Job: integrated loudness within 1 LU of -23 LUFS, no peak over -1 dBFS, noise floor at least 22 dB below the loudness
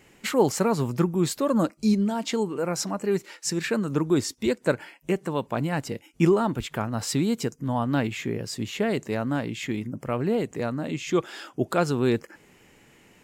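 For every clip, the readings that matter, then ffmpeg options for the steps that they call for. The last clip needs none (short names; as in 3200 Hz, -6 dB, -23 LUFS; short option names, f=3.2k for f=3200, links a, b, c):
loudness -26.5 LUFS; peak -8.5 dBFS; loudness target -23.0 LUFS
-> -af "volume=3.5dB"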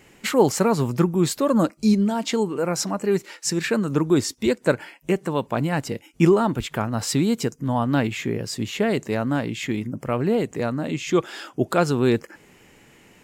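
loudness -23.0 LUFS; peak -5.0 dBFS; noise floor -54 dBFS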